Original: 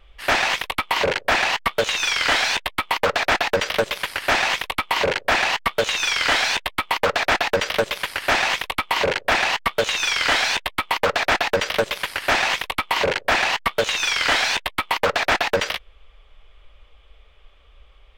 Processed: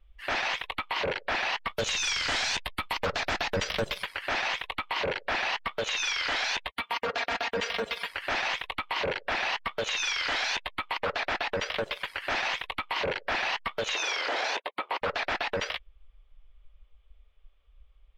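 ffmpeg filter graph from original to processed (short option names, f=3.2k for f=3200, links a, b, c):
-filter_complex "[0:a]asettb=1/sr,asplit=3[a][b][c];[a]atrim=end=1.694[d];[b]atrim=start=1.69:end=4.04,asetpts=PTS-STARTPTS,afade=t=in:d=0.004:c=qsin,afade=t=out:st=2.346:d=0.004:c=qsin,agate=range=-33dB:threshold=-36dB:ratio=3:release=100:detection=peak,bass=f=250:g=8,treble=f=4k:g=6[e];[c]atrim=start=4.036[f];[d][e]acrossfade=d=0.004:c1=hsin:c2=qsin[g];[g][f]acrossfade=d=0.004:c1=qsin:c2=hsin,asettb=1/sr,asplit=3[h][i][j];[h]atrim=end=6.684[k];[i]atrim=start=6.68:end=8.08,asetpts=PTS-STARTPTS,afade=t=in:d=0.004:c=qsin,afade=t=out:st=1.396:d=0.004:c=qsin,highpass=47,aecho=1:1:4.3:1,atrim=end_sample=61740[l];[j]atrim=start=8.076[m];[k][l]acrossfade=d=0.004:c1=hsin:c2=qsin[n];[n][m]acrossfade=d=0.004:c1=qsin:c2=hsin,asettb=1/sr,asplit=3[o][p][q];[o]atrim=end=13.954[r];[p]atrim=start=13.95:end=15.02,asetpts=PTS-STARTPTS,afade=t=in:d=0.004:c=qsin,afade=t=out:st=1.066:d=0.004:c=qsin,highpass=f=310:p=1,equalizer=f=480:w=0.62:g=15[s];[q]atrim=start=15.016[t];[r][s]acrossfade=d=0.004:c1=hsin:c2=qsin[u];[u][t]acrossfade=d=0.004:c1=qsin:c2=hsin,afftdn=nr=15:nf=-33,alimiter=limit=-17.5dB:level=0:latency=1:release=46,volume=-4dB"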